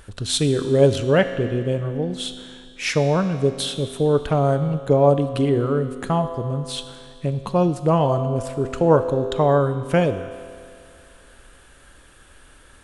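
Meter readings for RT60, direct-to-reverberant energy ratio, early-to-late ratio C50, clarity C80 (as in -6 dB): 2.3 s, 9.5 dB, 11.0 dB, 11.5 dB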